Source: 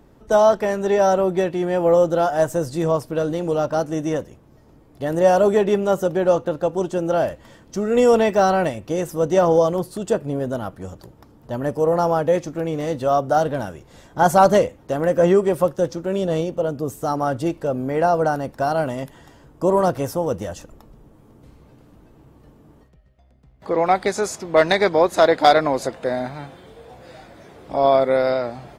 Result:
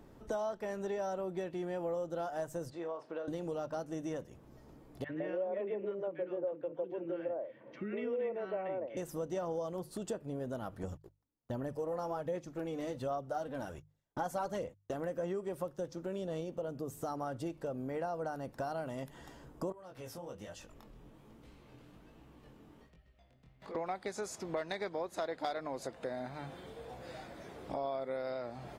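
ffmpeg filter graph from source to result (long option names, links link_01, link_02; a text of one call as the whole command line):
ffmpeg -i in.wav -filter_complex "[0:a]asettb=1/sr,asplit=3[link_01][link_02][link_03];[link_01]atrim=end=2.704[link_04];[link_02]atrim=start=2.7:end=3.28,asetpts=PTS-STARTPTS,afade=type=in:duration=0.004:curve=qsin,afade=type=out:start_time=0.576:duration=0.004:curve=qsin,highpass=430,lowpass=2600,acompressor=threshold=-35dB:ratio=1.5:attack=3.2:release=140:knee=1:detection=peak,asplit=2[link_05][link_06];[link_06]adelay=35,volume=-11dB[link_07];[link_05][link_07]amix=inputs=2:normalize=0,atrim=end_sample=25578[link_08];[link_03]atrim=start=3.276[link_09];[link_04][link_08]acrossfade=duration=0.004:curve1=hsin:curve2=qsin[link_10];[link_10][link_09]acrossfade=duration=0.004:curve1=qsin:curve2=hsin,asettb=1/sr,asplit=3[link_11][link_12][link_13];[link_11]atrim=end=5.044[link_14];[link_12]atrim=start=5.04:end=8.97,asetpts=PTS-STARTPTS,afade=type=in:duration=0.004:curve=qsin,afade=type=out:start_time=3.926:duration=0.004:curve=qsin,highpass=frequency=140:width=0.5412,highpass=frequency=140:width=1.3066,equalizer=frequency=180:width_type=q:width=4:gain=-8,equalizer=frequency=330:width_type=q:width=4:gain=5,equalizer=frequency=520:width_type=q:width=4:gain=7,equalizer=frequency=790:width_type=q:width=4:gain=-5,equalizer=frequency=1300:width_type=q:width=4:gain=-5,equalizer=frequency=2200:width_type=q:width=4:gain=6,lowpass=frequency=2600:width=0.5412,lowpass=frequency=2600:width=1.3066,acrossover=split=320|1200[link_15][link_16][link_17];[link_15]adelay=50[link_18];[link_16]adelay=160[link_19];[link_18][link_19][link_17]amix=inputs=3:normalize=0,atrim=end_sample=173313[link_20];[link_13]atrim=start=8.966[link_21];[link_14][link_20]acrossfade=duration=0.004:curve1=hsin:curve2=qsin[link_22];[link_22][link_21]acrossfade=duration=0.004:curve1=qsin:curve2=hsin,asettb=1/sr,asplit=3[link_23][link_24][link_25];[link_23]atrim=end=10.834[link_26];[link_24]atrim=start=10.83:end=14.94,asetpts=PTS-STARTPTS,afade=type=in:duration=0.004:curve=qsin,afade=type=out:start_time=4.106:duration=0.004:curve=qsin,agate=range=-38dB:threshold=-40dB:ratio=16:release=100:detection=peak,aphaser=in_gain=1:out_gain=1:delay=4:decay=0.41:speed=1.3:type=sinusoidal[link_27];[link_25]atrim=start=14.936[link_28];[link_26][link_27]acrossfade=duration=0.004:curve1=hsin:curve2=qsin[link_29];[link_29][link_28]acrossfade=duration=0.004:curve1=qsin:curve2=hsin,asettb=1/sr,asplit=3[link_30][link_31][link_32];[link_30]atrim=end=19.724[link_33];[link_31]atrim=start=19.72:end=23.75,asetpts=PTS-STARTPTS,afade=type=in:duration=0.004:curve=qsin,afade=type=out:start_time=4.026:duration=0.004:curve=qsin,equalizer=frequency=2800:width_type=o:width=1.7:gain=8,acompressor=threshold=-42dB:ratio=2.5:attack=3.2:release=140:knee=1:detection=peak,flanger=delay=18:depth=6.6:speed=1.2[link_34];[link_32]atrim=start=23.746[link_35];[link_33][link_34]acrossfade=duration=0.004:curve1=hsin:curve2=qsin[link_36];[link_36][link_35]acrossfade=duration=0.004:curve1=qsin:curve2=hsin,bandreject=frequency=50:width_type=h:width=6,bandreject=frequency=100:width_type=h:width=6,bandreject=frequency=150:width_type=h:width=6,acompressor=threshold=-33dB:ratio=4,volume=-5dB" out.wav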